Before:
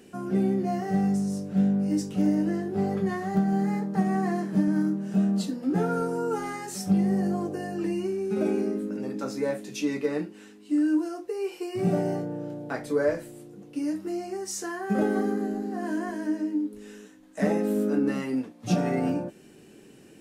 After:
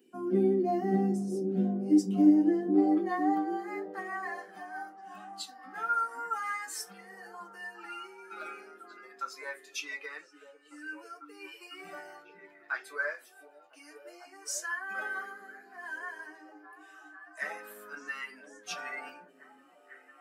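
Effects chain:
spectral dynamics exaggerated over time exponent 1.5
high-pass filter sweep 290 Hz → 1,400 Hz, 0:02.30–0:03.81
on a send: echo through a band-pass that steps 499 ms, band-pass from 250 Hz, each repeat 0.7 octaves, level −4.5 dB

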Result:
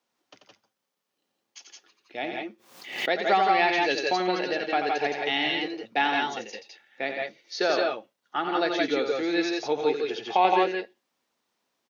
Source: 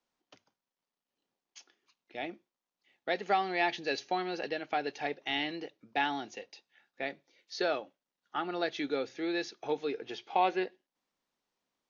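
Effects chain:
high-pass filter 160 Hz 6 dB per octave
multi-tap delay 88/93/165/174 ms −7/−17/−5/−5 dB
0:02.21–0:03.14: background raised ahead of every attack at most 81 dB per second
level +6 dB

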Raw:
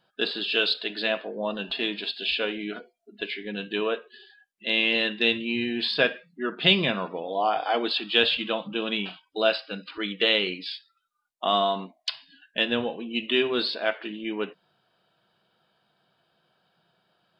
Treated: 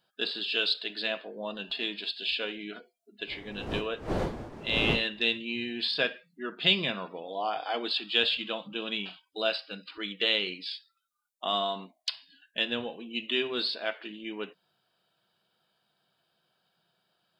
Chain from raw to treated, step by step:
0:03.26–0:05.32: wind on the microphone 480 Hz −29 dBFS
high-shelf EQ 4,300 Hz +11.5 dB
level −7.5 dB

